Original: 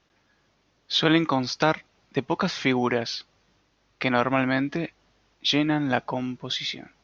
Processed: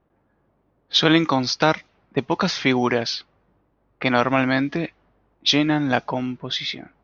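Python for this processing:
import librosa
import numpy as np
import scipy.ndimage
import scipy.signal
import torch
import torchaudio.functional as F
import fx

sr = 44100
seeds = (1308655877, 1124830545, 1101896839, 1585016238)

y = fx.env_lowpass(x, sr, base_hz=890.0, full_db=-20.0)
y = fx.dynamic_eq(y, sr, hz=5400.0, q=1.4, threshold_db=-44.0, ratio=4.0, max_db=5)
y = y * 10.0 ** (3.5 / 20.0)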